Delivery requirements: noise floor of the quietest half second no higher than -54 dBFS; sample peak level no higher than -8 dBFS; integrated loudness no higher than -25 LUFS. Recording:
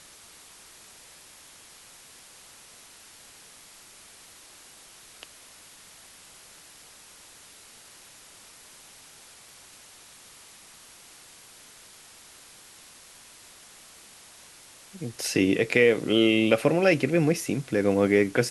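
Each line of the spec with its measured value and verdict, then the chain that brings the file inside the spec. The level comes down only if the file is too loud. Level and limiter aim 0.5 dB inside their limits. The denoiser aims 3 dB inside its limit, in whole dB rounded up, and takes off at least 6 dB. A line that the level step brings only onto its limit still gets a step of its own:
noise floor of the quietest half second -51 dBFS: fail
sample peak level -4.5 dBFS: fail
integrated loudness -23.0 LUFS: fail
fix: noise reduction 6 dB, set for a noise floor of -51 dBFS; trim -2.5 dB; peak limiter -8.5 dBFS

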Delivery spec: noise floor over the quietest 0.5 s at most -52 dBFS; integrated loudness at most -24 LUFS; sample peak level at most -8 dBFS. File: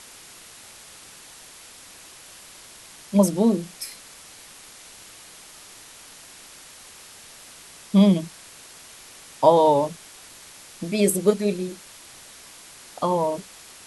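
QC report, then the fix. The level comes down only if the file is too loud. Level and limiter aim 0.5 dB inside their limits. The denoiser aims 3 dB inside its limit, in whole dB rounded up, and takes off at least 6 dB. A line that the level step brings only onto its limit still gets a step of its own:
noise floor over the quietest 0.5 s -46 dBFS: fail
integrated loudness -21.5 LUFS: fail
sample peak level -3.0 dBFS: fail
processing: noise reduction 6 dB, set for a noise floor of -46 dBFS; trim -3 dB; peak limiter -8.5 dBFS

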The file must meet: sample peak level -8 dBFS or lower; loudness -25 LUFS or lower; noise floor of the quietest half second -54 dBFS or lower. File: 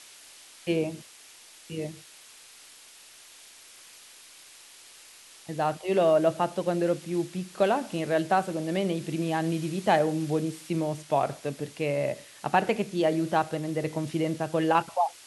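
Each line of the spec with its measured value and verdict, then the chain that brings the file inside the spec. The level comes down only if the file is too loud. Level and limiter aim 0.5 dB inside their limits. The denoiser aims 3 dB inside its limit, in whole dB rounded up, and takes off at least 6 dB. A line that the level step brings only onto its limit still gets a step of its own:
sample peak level -8.5 dBFS: pass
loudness -28.0 LUFS: pass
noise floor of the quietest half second -51 dBFS: fail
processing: noise reduction 6 dB, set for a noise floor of -51 dBFS

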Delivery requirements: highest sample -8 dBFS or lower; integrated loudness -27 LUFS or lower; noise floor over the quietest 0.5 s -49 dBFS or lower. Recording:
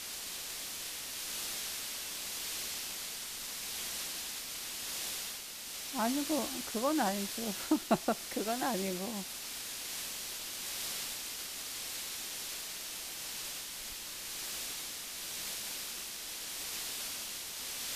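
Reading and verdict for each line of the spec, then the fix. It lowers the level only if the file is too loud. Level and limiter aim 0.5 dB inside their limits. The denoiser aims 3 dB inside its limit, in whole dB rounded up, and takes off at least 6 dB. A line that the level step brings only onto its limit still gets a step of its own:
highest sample -16.0 dBFS: pass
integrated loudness -36.5 LUFS: pass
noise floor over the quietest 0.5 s -44 dBFS: fail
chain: noise reduction 8 dB, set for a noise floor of -44 dBFS

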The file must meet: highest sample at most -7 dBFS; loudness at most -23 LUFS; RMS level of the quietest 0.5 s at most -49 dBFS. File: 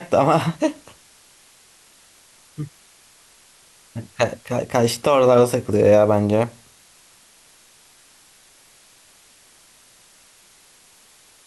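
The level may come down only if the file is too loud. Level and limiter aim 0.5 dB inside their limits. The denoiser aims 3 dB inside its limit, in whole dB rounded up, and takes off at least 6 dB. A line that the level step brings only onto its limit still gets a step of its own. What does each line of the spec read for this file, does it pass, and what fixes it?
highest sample -4.5 dBFS: fail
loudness -18.5 LUFS: fail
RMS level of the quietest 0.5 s -52 dBFS: pass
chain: trim -5 dB

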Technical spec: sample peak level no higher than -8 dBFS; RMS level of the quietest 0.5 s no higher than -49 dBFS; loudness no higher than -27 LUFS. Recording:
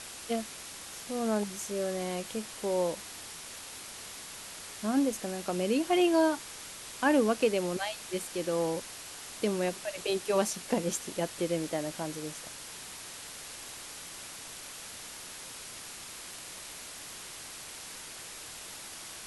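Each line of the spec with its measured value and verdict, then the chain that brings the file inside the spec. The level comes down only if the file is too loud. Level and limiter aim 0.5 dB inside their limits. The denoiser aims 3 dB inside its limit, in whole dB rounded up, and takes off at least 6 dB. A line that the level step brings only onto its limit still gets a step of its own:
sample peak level -13.0 dBFS: pass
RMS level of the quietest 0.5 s -45 dBFS: fail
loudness -33.5 LUFS: pass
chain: noise reduction 7 dB, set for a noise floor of -45 dBFS

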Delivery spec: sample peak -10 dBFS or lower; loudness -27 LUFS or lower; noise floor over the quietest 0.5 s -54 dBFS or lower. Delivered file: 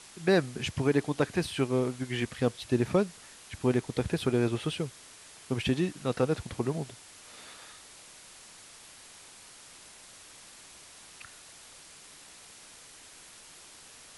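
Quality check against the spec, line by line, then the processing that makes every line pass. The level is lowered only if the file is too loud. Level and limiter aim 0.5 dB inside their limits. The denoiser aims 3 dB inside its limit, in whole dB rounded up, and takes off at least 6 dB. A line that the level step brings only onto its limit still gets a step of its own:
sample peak -12.0 dBFS: pass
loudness -30.0 LUFS: pass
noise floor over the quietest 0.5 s -52 dBFS: fail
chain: noise reduction 6 dB, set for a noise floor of -52 dBFS

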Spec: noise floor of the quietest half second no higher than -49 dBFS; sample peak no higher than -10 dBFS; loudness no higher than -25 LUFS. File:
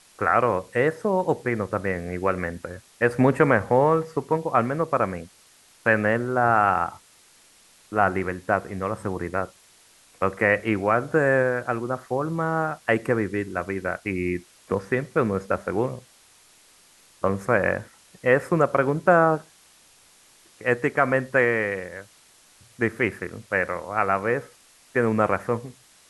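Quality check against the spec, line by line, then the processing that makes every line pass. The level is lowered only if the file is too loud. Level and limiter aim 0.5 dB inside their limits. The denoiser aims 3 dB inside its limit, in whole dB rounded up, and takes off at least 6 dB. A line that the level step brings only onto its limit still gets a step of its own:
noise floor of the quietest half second -56 dBFS: pass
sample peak -3.5 dBFS: fail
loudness -24.0 LUFS: fail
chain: trim -1.5 dB; peak limiter -10.5 dBFS

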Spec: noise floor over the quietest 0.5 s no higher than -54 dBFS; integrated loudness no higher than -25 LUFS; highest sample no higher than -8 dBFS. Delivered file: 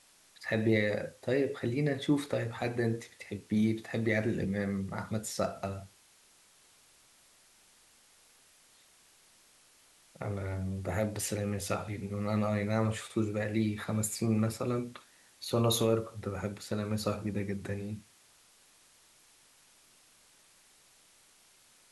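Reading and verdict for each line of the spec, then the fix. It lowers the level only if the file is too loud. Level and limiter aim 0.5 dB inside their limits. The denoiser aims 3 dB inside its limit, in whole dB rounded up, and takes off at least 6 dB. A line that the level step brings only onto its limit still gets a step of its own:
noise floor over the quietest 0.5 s -63 dBFS: pass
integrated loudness -33.0 LUFS: pass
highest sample -15.5 dBFS: pass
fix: none needed

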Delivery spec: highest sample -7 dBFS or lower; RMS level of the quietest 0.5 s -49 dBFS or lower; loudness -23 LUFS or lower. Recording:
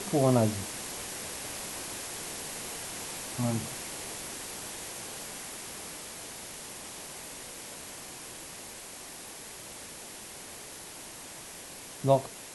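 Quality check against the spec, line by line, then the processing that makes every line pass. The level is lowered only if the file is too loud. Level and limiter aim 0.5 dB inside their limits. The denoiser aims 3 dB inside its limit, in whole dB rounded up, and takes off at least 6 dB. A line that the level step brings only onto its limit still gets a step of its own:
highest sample -10.5 dBFS: pass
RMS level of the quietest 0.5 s -45 dBFS: fail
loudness -35.0 LUFS: pass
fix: noise reduction 7 dB, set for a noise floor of -45 dBFS

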